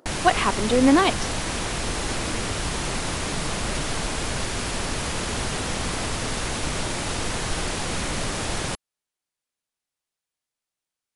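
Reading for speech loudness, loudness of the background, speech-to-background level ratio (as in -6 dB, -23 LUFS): -20.5 LUFS, -27.0 LUFS, 6.5 dB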